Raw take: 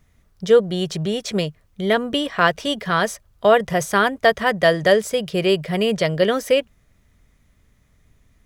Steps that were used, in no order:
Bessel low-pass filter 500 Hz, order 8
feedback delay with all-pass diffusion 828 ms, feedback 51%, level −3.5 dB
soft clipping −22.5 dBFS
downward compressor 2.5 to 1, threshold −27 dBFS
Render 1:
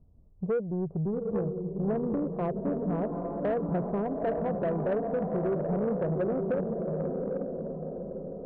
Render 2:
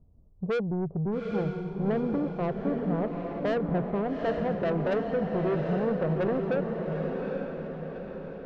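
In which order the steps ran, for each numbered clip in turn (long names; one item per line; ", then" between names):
Bessel low-pass filter, then downward compressor, then feedback delay with all-pass diffusion, then soft clipping
Bessel low-pass filter, then soft clipping, then downward compressor, then feedback delay with all-pass diffusion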